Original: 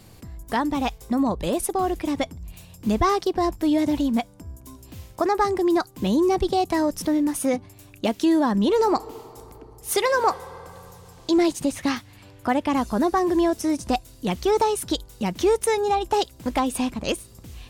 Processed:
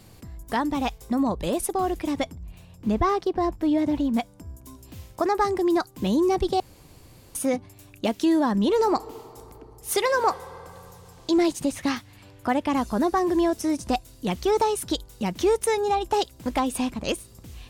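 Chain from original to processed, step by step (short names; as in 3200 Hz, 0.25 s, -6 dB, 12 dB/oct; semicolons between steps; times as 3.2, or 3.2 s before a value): 2.35–4.14 high shelf 3800 Hz -11.5 dB; 6.6–7.35 room tone; gain -1.5 dB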